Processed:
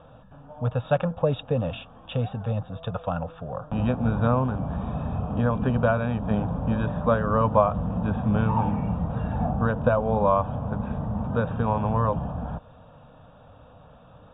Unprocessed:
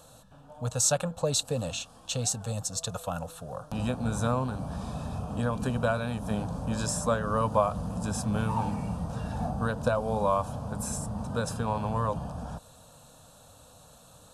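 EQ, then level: brick-wall FIR low-pass 3800 Hz; air absorption 420 m; +6.5 dB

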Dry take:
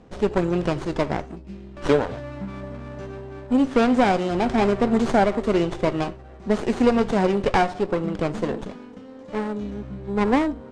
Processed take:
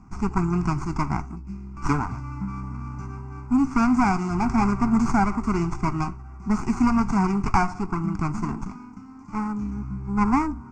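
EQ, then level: fixed phaser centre 1300 Hz, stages 4; fixed phaser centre 2600 Hz, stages 8; +5.5 dB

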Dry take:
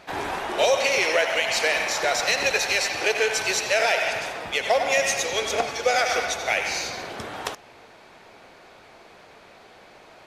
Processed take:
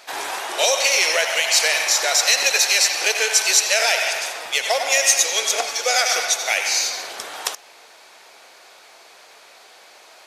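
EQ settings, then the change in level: tone controls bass -15 dB, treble +11 dB; low shelf 420 Hz -9 dB; +2.5 dB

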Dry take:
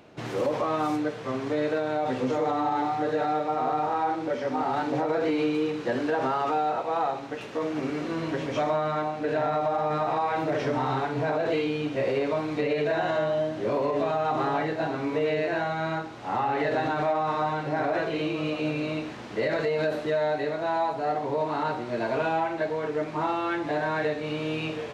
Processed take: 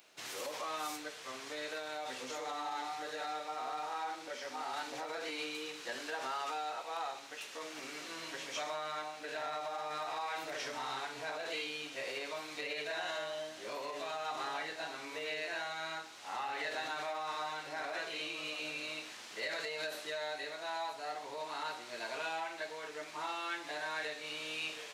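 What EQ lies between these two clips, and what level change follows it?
differentiator; +5.5 dB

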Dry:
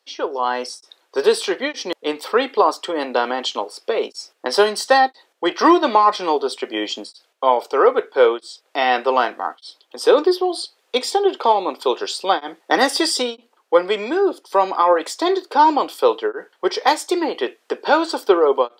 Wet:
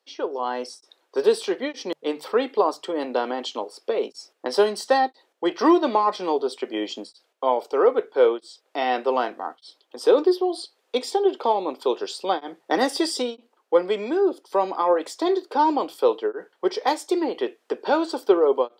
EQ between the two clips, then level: notches 50/100/150 Hz; dynamic EQ 1400 Hz, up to -3 dB, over -30 dBFS, Q 0.92; tilt shelf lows +3.5 dB, about 790 Hz; -4.5 dB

